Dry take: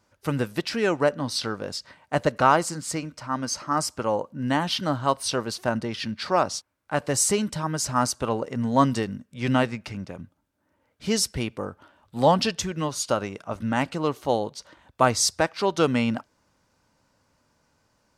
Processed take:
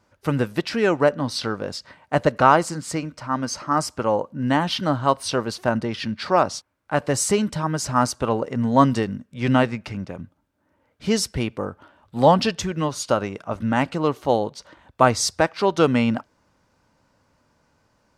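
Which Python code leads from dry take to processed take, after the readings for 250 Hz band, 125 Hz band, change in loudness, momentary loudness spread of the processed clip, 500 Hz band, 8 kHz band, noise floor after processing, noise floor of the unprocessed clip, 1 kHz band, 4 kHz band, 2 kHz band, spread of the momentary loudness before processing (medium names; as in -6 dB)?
+4.0 dB, +4.0 dB, +3.0 dB, 12 LU, +4.0 dB, -1.5 dB, -67 dBFS, -70 dBFS, +3.5 dB, +0.5 dB, +3.0 dB, 12 LU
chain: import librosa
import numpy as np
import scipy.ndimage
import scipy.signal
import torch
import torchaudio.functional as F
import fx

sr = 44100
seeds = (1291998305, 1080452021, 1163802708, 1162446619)

y = fx.high_shelf(x, sr, hz=4000.0, db=-7.0)
y = y * 10.0 ** (4.0 / 20.0)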